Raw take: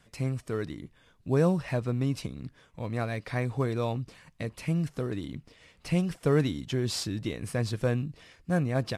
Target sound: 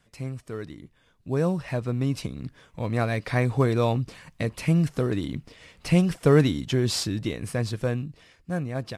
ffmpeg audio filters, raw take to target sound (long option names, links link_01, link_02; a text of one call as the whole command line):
ffmpeg -i in.wav -af "dynaudnorm=framelen=330:gausssize=13:maxgain=11.5dB,volume=-3dB" out.wav